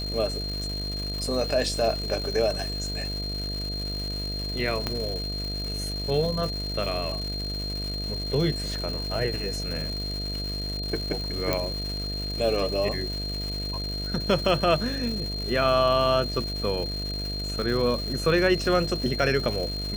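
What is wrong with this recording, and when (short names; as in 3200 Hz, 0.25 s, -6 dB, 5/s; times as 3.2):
buzz 50 Hz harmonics 14 -33 dBFS
crackle 430/s -32 dBFS
tone 4200 Hz -32 dBFS
4.87 pop -12 dBFS
11.53 pop -9 dBFS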